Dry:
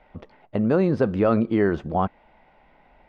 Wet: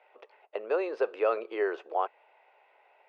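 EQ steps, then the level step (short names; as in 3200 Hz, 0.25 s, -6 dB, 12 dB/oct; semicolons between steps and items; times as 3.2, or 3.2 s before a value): elliptic high-pass 410 Hz, stop band 60 dB; air absorption 51 m; bell 2600 Hz +8.5 dB 0.22 oct; -4.5 dB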